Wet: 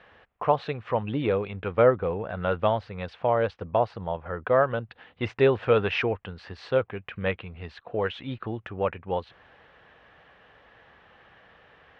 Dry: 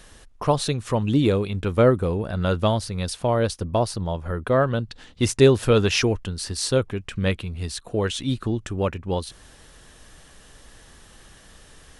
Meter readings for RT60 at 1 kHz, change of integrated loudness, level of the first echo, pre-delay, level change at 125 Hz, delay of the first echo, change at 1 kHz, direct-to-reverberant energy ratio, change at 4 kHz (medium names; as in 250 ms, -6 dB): no reverb, -4.0 dB, no echo, no reverb, -9.5 dB, no echo, 0.0 dB, no reverb, -10.5 dB